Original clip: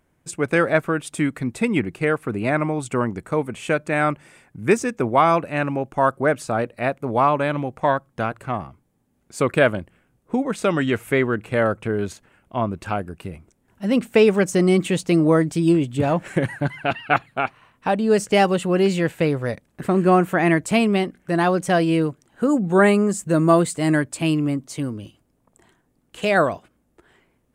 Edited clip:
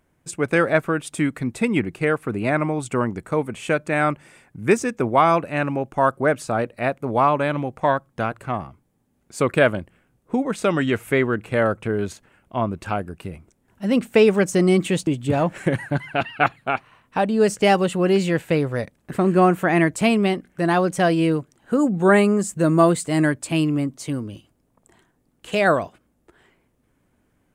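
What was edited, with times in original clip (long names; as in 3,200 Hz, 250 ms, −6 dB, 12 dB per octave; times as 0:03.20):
0:15.07–0:15.77: remove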